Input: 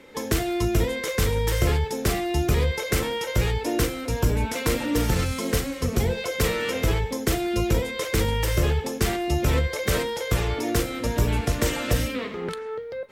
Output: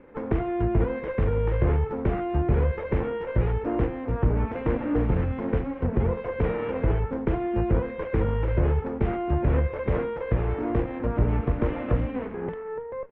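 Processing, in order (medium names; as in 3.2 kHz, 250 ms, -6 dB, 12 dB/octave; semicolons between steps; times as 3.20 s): comb filter that takes the minimum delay 0.35 ms; low-pass 1.7 kHz 24 dB/octave; on a send: delay 275 ms -23 dB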